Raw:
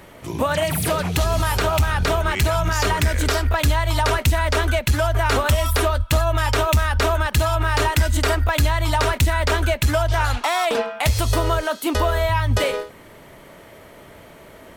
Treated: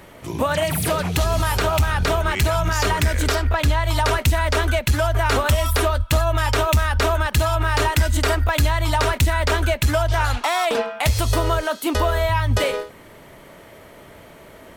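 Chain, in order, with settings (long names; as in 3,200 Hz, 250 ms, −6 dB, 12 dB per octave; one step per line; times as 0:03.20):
0:03.35–0:03.84: high-shelf EQ 7,000 Hz −8.5 dB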